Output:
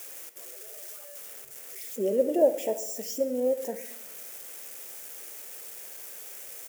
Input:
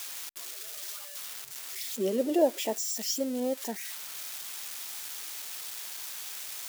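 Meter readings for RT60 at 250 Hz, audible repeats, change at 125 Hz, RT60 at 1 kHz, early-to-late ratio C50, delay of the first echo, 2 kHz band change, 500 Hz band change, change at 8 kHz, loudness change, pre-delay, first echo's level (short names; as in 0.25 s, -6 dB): 1.0 s, 1, n/a, 0.95 s, 12.0 dB, 67 ms, -5.5 dB, +4.5 dB, -4.5 dB, +1.0 dB, 15 ms, -18.0 dB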